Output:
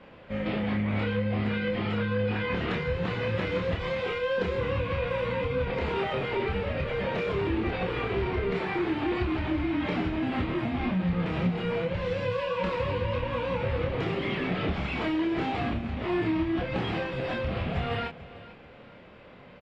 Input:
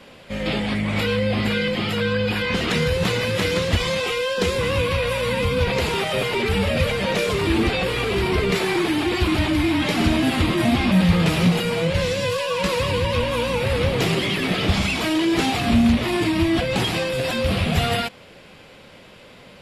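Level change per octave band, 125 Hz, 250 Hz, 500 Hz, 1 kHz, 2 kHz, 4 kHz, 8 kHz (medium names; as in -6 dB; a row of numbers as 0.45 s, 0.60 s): -8.0 dB, -8.5 dB, -7.0 dB, -7.0 dB, -9.5 dB, -15.0 dB, under -25 dB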